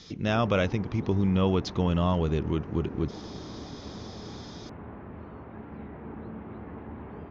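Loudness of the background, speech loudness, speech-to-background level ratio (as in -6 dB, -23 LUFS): -42.0 LUFS, -27.5 LUFS, 14.5 dB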